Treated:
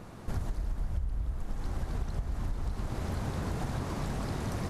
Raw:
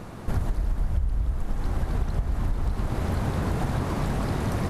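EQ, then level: dynamic bell 6.1 kHz, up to +5 dB, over -58 dBFS, Q 0.9; -7.5 dB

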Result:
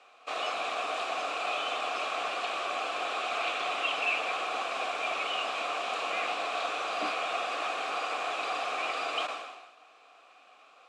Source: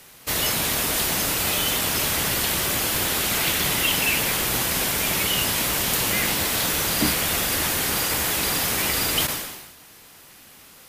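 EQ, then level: vowel filter a; cabinet simulation 280–8500 Hz, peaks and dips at 290 Hz +4 dB, 470 Hz +4 dB, 1.3 kHz +7 dB, 1.9 kHz +9 dB, 3.8 kHz +5 dB, 7.4 kHz +4 dB; +4.0 dB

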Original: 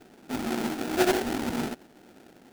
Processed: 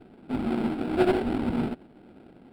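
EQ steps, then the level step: boxcar filter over 7 samples; bass shelf 300 Hz +9.5 dB; band-stop 1.8 kHz, Q 8.6; -2.0 dB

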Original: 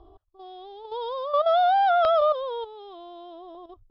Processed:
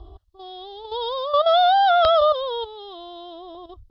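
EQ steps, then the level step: Butterworth band-stop 2.4 kHz, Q 6.6; peaking EQ 61 Hz +13.5 dB 1.7 oct; peaking EQ 4.1 kHz +10 dB 1.3 oct; +3.0 dB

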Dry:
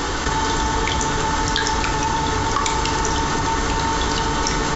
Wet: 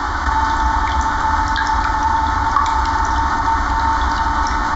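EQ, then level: three-band isolator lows -20 dB, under 190 Hz, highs -23 dB, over 4.1 kHz; resonant low shelf 100 Hz +12.5 dB, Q 3; static phaser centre 1.1 kHz, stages 4; +7.0 dB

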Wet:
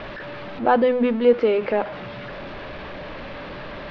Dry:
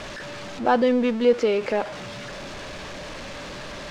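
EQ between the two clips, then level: Bessel low-pass 2.5 kHz, order 8; hum notches 50/100/150/200/250 Hz; +2.5 dB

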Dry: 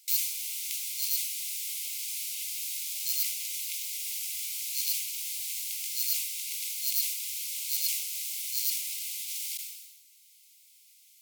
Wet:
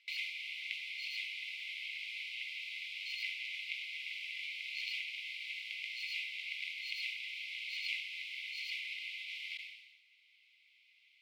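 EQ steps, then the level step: band-pass filter 2 kHz, Q 1.5; distance through air 410 m; +13.5 dB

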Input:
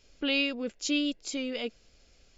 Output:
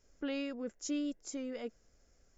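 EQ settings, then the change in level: high-order bell 3.3 kHz -12.5 dB 1.2 oct; -6.0 dB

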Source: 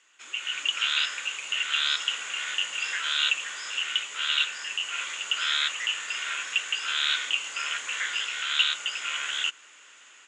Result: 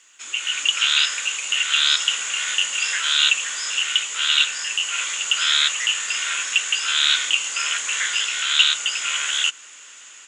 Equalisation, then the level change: tone controls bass +11 dB, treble +9 dB; bass shelf 110 Hz -6 dB; bass shelf 220 Hz -9.5 dB; +5.0 dB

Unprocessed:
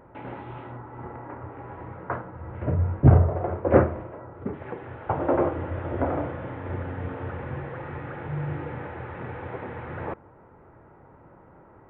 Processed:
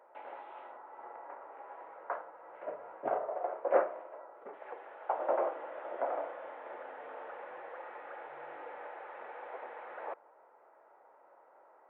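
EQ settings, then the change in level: ladder high-pass 510 Hz, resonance 40%; -1.0 dB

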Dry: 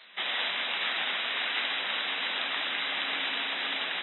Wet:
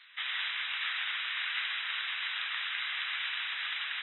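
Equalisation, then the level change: high-pass 1.3 kHz 24 dB/octave; treble shelf 3.7 kHz -10 dB; 0.0 dB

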